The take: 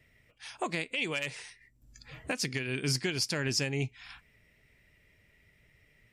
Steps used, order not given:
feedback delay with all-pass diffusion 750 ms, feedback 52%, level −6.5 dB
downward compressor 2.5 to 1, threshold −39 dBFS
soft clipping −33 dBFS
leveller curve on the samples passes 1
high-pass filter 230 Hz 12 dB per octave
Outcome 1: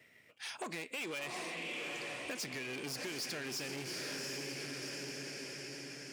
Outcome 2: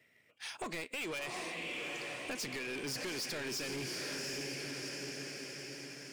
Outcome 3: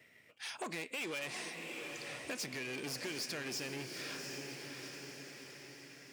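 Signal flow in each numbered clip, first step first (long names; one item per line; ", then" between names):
feedback delay with all-pass diffusion, then soft clipping, then leveller curve on the samples, then high-pass filter, then downward compressor
feedback delay with all-pass diffusion, then leveller curve on the samples, then high-pass filter, then soft clipping, then downward compressor
soft clipping, then leveller curve on the samples, then feedback delay with all-pass diffusion, then downward compressor, then high-pass filter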